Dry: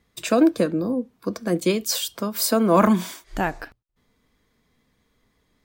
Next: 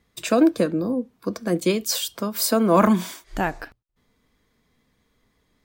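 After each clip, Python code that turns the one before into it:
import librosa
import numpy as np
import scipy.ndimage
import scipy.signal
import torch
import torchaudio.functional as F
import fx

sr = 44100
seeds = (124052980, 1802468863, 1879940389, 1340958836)

y = x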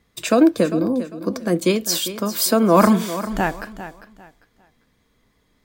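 y = fx.echo_feedback(x, sr, ms=399, feedback_pct=26, wet_db=-13.0)
y = F.gain(torch.from_numpy(y), 3.0).numpy()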